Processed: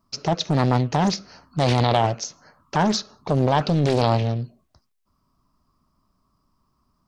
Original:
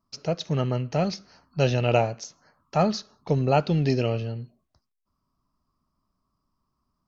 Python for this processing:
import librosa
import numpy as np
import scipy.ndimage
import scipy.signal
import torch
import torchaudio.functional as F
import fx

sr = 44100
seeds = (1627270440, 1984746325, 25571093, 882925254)

p1 = fx.over_compress(x, sr, threshold_db=-25.0, ratio=-0.5)
p2 = x + (p1 * librosa.db_to_amplitude(1.0))
y = fx.doppler_dist(p2, sr, depth_ms=0.75)